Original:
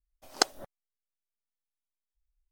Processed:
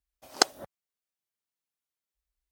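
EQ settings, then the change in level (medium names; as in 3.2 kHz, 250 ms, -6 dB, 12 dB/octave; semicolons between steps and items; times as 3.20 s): high-pass 67 Hz 12 dB/octave; +2.5 dB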